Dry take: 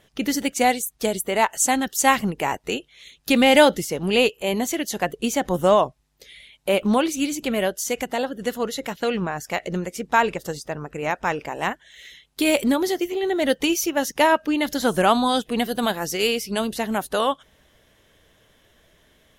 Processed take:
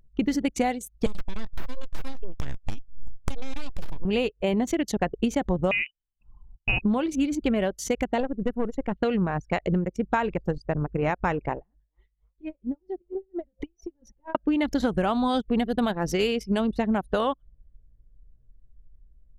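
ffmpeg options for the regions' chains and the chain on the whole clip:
-filter_complex "[0:a]asettb=1/sr,asplit=3[a][b][c];[a]atrim=end=1.064[d];[b]atrim=start=1.06:end=4.05,asetpts=PTS-STARTPTS,afade=t=in:d=0.004:c=qsin,afade=t=out:st=2.986:d=0.004:c=qsin,highshelf=f=2.6k:t=q:w=1.5:g=9,acompressor=threshold=-23dB:ratio=4:attack=3.2:release=140:knee=1:detection=peak,aeval=exprs='abs(val(0))':c=same[e];[c]atrim=start=4.046[f];[d][e]acrossfade=d=0.004:c1=hsin:c2=qsin[g];[g][f]acrossfade=d=0.004:c1=qsin:c2=hsin,asettb=1/sr,asplit=3[h][i][j];[h]atrim=end=5.714[k];[i]atrim=start=5.71:end=6.82,asetpts=PTS-STARTPTS,afade=t=in:d=0.004:c=qsin,afade=t=out:st=1.106:d=0.004:c=qsin,lowpass=f=2.6k:t=q:w=0.5098,lowpass=f=2.6k:t=q:w=0.6013,lowpass=f=2.6k:t=q:w=0.9,lowpass=f=2.6k:t=q:w=2.563,afreqshift=-3100,asubboost=boost=11:cutoff=240[l];[j]atrim=start=6.816[m];[k][l]acrossfade=d=0.004:c1=hsin:c2=qsin[n];[n][m]acrossfade=d=0.004:c1=qsin:c2=hsin,asettb=1/sr,asplit=3[o][p][q];[o]atrim=end=8.204[r];[p]atrim=start=8.2:end=8.92,asetpts=PTS-STARTPTS,afade=t=in:d=0.004:c=qsin,afade=t=out:st=0.716:d=0.004:c=qsin,equalizer=f=3.9k:w=4.7:g=-12.5,aeval=exprs='(tanh(10*val(0)+0.35)-tanh(0.35))/10':c=same[s];[q]atrim=start=8.916[t];[r][s]acrossfade=d=0.004:c1=hsin:c2=qsin[u];[u][t]acrossfade=d=0.004:c1=qsin:c2=hsin,asettb=1/sr,asplit=3[v][w][x];[v]atrim=end=11.574[y];[w]atrim=start=11.57:end=14.35,asetpts=PTS-STARTPTS,afade=t=in:d=0.004:c=qsin,afade=t=out:st=2.776:d=0.004:c=qsin,asplit=4[z][aa][ab][ac];[aa]adelay=305,afreqshift=150,volume=-22.5dB[ad];[ab]adelay=610,afreqshift=300,volume=-30.9dB[ae];[ac]adelay=915,afreqshift=450,volume=-39.3dB[af];[z][ad][ae][af]amix=inputs=4:normalize=0,atrim=end_sample=122598,acompressor=threshold=-29dB:ratio=12:attack=3.2:release=140:knee=1:detection=peak,aeval=exprs='val(0)*pow(10,-21*(0.5-0.5*cos(2*PI*4.4*n/s))/20)':c=same[ag];[x]atrim=start=14.346[ah];[y][ag]acrossfade=d=0.004:c1=hsin:c2=qsin[ai];[ai][ah]acrossfade=d=0.004:c1=qsin:c2=hsin,anlmdn=63.1,aemphasis=mode=reproduction:type=bsi,acompressor=threshold=-23dB:ratio=10,volume=2.5dB"

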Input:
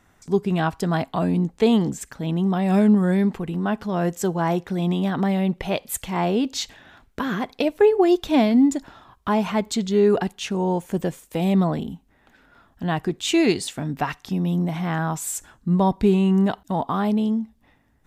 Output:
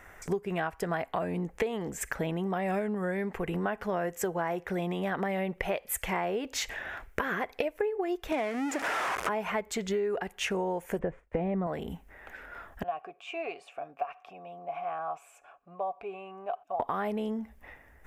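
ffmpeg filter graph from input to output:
-filter_complex "[0:a]asettb=1/sr,asplit=3[a][b][c];[a]atrim=end=8.324[d];[b]atrim=start=8.32:end=9.29,asetpts=PTS-STARTPTS,afade=t=in:d=0.004:c=qsin,afade=t=out:st=0.966:d=0.004:c=qsin,aeval=exprs='val(0)+0.5*0.0841*sgn(val(0))':c=same,highpass=210,lowpass=7.7k[e];[c]atrim=start=9.286[f];[d][e]acrossfade=d=0.004:c1=hsin:c2=qsin[g];[g][f]acrossfade=d=0.004:c1=qsin:c2=hsin,asettb=1/sr,asplit=3[h][i][j];[h]atrim=end=10.994[k];[i]atrim=start=10.99:end=11.67,asetpts=PTS-STARTPTS,afade=t=in:d=0.004:c=qsin,afade=t=out:st=0.676:d=0.004:c=qsin,lowpass=1.6k,lowshelf=f=200:g=9.5,agate=range=-33dB:threshold=-47dB:ratio=3:release=100:detection=peak[l];[j]atrim=start=11.666[m];[k][l]acrossfade=d=0.004:c1=hsin:c2=qsin[n];[n][m]acrossfade=d=0.004:c1=qsin:c2=hsin,asettb=1/sr,asplit=3[o][p][q];[o]atrim=end=12.834[r];[p]atrim=start=12.83:end=16.8,asetpts=PTS-STARTPTS,afade=t=in:d=0.004:c=qsin,afade=t=out:st=3.966:d=0.004:c=qsin,acompressor=threshold=-38dB:ratio=1.5:attack=3.2:release=140:knee=1:detection=peak,asplit=3[s][t][u];[s]bandpass=f=730:t=q:w=8,volume=0dB[v];[t]bandpass=f=1.09k:t=q:w=8,volume=-6dB[w];[u]bandpass=f=2.44k:t=q:w=8,volume=-9dB[x];[v][w][x]amix=inputs=3:normalize=0,aecho=1:1:7.1:0.31,atrim=end_sample=175077[y];[q]atrim=start=16.796[z];[r][y]acrossfade=d=0.004:c1=hsin:c2=qsin[aa];[aa][z]acrossfade=d=0.004:c1=qsin:c2=hsin,equalizer=f=125:t=o:w=1:g=-10,equalizer=f=250:t=o:w=1:g=-11,equalizer=f=500:t=o:w=1:g=4,equalizer=f=1k:t=o:w=1:g=-3,equalizer=f=2k:t=o:w=1:g=7,equalizer=f=4k:t=o:w=1:g=-12,equalizer=f=8k:t=o:w=1:g=-4,acompressor=threshold=-37dB:ratio=12,volume=9dB"

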